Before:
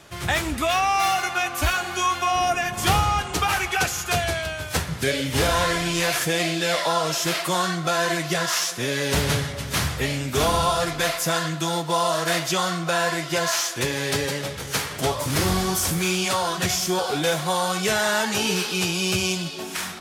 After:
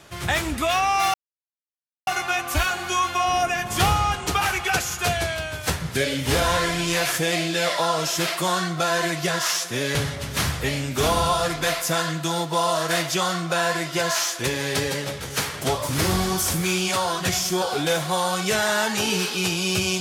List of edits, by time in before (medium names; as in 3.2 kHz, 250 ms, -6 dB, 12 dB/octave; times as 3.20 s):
1.14 s: insert silence 0.93 s
9.02–9.32 s: delete